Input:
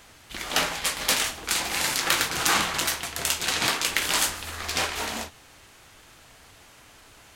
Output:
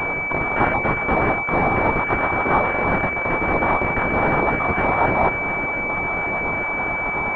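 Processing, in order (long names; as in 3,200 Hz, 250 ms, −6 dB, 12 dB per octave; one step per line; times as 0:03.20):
time-frequency cells dropped at random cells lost 37%
reversed playback
downward compressor 10 to 1, threshold −43 dBFS, peak gain reduction 25 dB
reversed playback
Butterworth high-pass 640 Hz 36 dB per octave
boost into a limiter +33.5 dB
switching amplifier with a slow clock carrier 2,300 Hz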